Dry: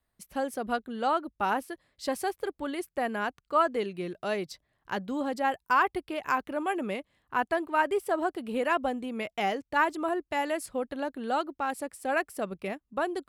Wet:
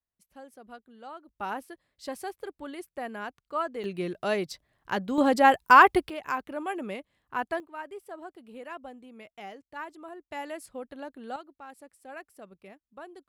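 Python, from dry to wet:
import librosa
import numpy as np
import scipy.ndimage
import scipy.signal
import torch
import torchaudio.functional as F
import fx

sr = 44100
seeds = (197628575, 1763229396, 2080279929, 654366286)

y = fx.gain(x, sr, db=fx.steps((0.0, -16.5), (1.29, -6.0), (3.84, 3.0), (5.18, 9.0), (6.1, -3.0), (7.6, -14.0), (10.31, -7.5), (11.36, -15.0)))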